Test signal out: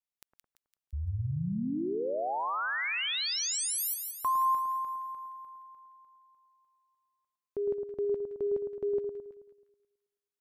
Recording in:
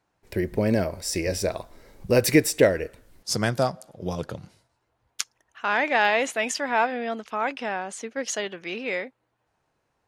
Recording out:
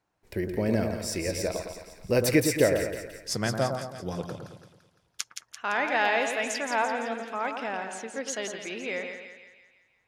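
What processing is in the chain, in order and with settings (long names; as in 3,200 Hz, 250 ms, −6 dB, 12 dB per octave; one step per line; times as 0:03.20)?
echo with a time of its own for lows and highs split 1,500 Hz, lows 108 ms, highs 170 ms, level −6 dB
level −4.5 dB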